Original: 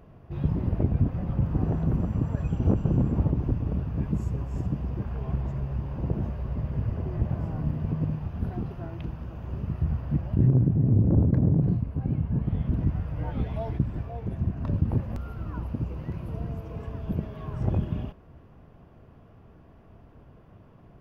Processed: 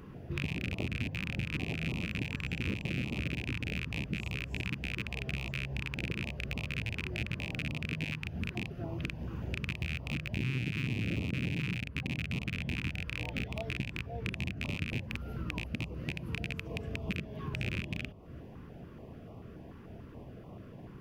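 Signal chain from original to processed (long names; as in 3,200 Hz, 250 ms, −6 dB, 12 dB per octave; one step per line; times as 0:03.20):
loose part that buzzes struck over −27 dBFS, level −16 dBFS
low-shelf EQ 68 Hz −11.5 dB
mains-hum notches 50/100/150 Hz
downward compressor 4 to 1, threshold −42 dBFS, peak gain reduction 19.5 dB
notch on a step sequencer 6.9 Hz 660–1,600 Hz
level +7.5 dB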